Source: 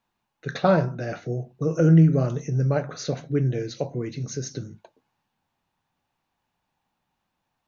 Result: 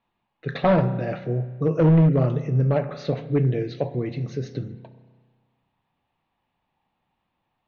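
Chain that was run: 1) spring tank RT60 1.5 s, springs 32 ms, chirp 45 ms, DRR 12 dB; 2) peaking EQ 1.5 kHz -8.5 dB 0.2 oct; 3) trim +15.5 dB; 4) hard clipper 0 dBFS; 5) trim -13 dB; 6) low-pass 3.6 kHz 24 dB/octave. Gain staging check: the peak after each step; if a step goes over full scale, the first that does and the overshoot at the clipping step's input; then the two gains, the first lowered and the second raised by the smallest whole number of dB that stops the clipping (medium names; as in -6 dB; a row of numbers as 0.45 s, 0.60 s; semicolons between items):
-6.5 dBFS, -6.5 dBFS, +9.0 dBFS, 0.0 dBFS, -13.0 dBFS, -12.5 dBFS; step 3, 9.0 dB; step 3 +6.5 dB, step 5 -4 dB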